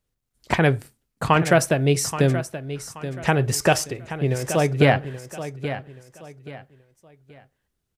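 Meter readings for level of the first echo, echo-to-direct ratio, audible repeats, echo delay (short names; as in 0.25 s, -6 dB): -12.0 dB, -11.5 dB, 3, 0.828 s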